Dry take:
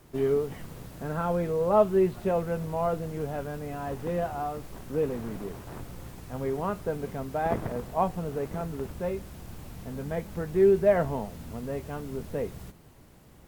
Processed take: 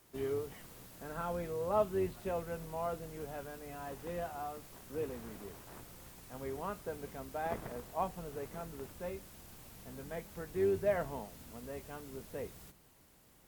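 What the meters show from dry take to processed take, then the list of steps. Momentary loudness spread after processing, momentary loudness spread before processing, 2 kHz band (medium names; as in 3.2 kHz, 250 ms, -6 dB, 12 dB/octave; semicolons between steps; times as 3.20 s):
17 LU, 18 LU, -7.0 dB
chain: octave divider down 2 oct, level -2 dB; tilt EQ +2 dB/octave; hum notches 50/100/150 Hz; trim -8.5 dB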